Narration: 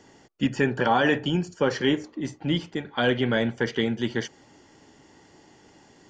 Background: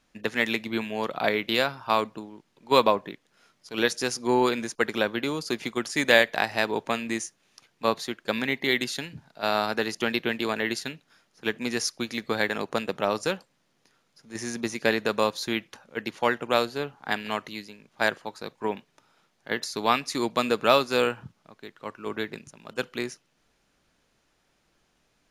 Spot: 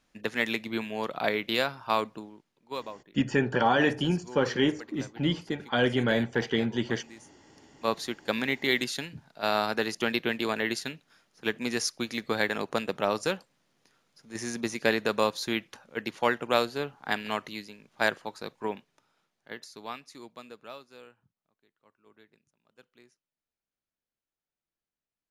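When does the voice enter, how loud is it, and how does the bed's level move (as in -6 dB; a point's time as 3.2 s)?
2.75 s, -2.0 dB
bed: 2.27 s -3 dB
2.9 s -20 dB
7.39 s -20 dB
7.95 s -1.5 dB
18.46 s -1.5 dB
21.02 s -27.5 dB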